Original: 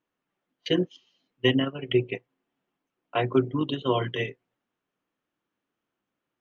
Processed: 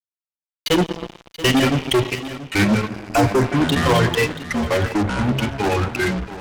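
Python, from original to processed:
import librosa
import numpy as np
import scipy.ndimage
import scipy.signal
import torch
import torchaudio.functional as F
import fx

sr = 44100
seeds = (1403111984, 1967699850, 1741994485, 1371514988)

p1 = fx.bin_expand(x, sr, power=2.0)
p2 = fx.level_steps(p1, sr, step_db=9)
p3 = fx.rev_schroeder(p2, sr, rt60_s=2.6, comb_ms=27, drr_db=13.5)
p4 = fx.fuzz(p3, sr, gain_db=39.0, gate_db=-47.0)
p5 = fx.echo_pitch(p4, sr, ms=734, semitones=-4, count=3, db_per_echo=-3.0)
p6 = fx.spec_box(p5, sr, start_s=2.89, length_s=0.56, low_hz=1700.0, high_hz=4600.0, gain_db=-6)
y = p6 + fx.echo_single(p6, sr, ms=681, db=-14.5, dry=0)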